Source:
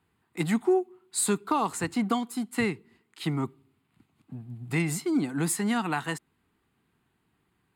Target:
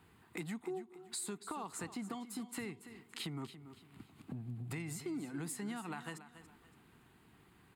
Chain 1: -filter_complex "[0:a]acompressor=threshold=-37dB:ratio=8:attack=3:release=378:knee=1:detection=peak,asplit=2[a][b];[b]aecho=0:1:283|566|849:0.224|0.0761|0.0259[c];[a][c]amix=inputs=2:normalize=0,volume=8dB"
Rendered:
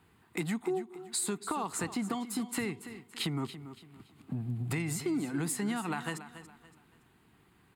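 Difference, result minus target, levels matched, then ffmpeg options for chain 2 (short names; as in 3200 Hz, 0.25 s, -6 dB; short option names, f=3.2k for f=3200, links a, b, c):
compressor: peak gain reduction -9 dB
-filter_complex "[0:a]acompressor=threshold=-47dB:ratio=8:attack=3:release=378:knee=1:detection=peak,asplit=2[a][b];[b]aecho=0:1:283|566|849:0.224|0.0761|0.0259[c];[a][c]amix=inputs=2:normalize=0,volume=8dB"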